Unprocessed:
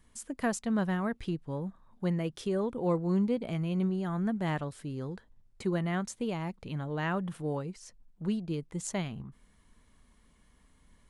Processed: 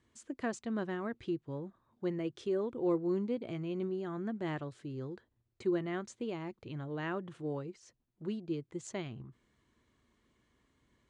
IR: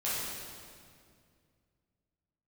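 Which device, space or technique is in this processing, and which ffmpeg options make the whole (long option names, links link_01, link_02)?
car door speaker: -af "highpass=81,equalizer=frequency=120:width_type=q:width=4:gain=5,equalizer=frequency=180:width_type=q:width=4:gain=-7,equalizer=frequency=350:width_type=q:width=4:gain=9,equalizer=frequency=850:width_type=q:width=4:gain=-3,equalizer=frequency=5300:width_type=q:width=4:gain=-4,lowpass=frequency=7100:width=0.5412,lowpass=frequency=7100:width=1.3066,volume=-5.5dB"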